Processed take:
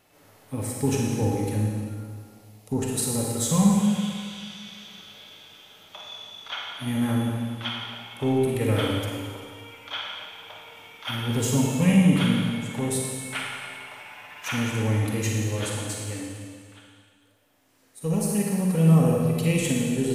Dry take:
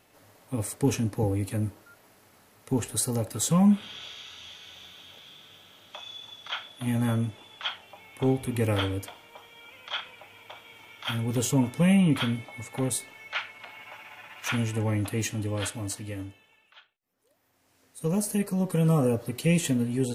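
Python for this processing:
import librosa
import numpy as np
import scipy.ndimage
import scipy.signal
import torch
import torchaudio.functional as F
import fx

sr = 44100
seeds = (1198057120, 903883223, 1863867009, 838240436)

y = fx.env_phaser(x, sr, low_hz=190.0, high_hz=3000.0, full_db=-31.5, at=(1.55, 2.82))
y = fx.rev_schroeder(y, sr, rt60_s=1.9, comb_ms=38, drr_db=-1.5)
y = F.gain(torch.from_numpy(y), -1.0).numpy()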